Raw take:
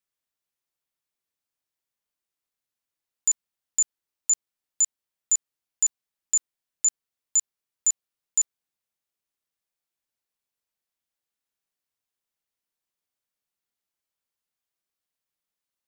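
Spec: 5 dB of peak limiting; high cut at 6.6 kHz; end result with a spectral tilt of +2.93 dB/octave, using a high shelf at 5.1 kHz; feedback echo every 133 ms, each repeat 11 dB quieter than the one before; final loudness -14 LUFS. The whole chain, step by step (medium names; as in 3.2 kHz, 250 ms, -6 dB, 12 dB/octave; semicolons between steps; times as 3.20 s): low-pass 6.6 kHz; treble shelf 5.1 kHz -5.5 dB; peak limiter -26.5 dBFS; feedback delay 133 ms, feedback 28%, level -11 dB; trim +23 dB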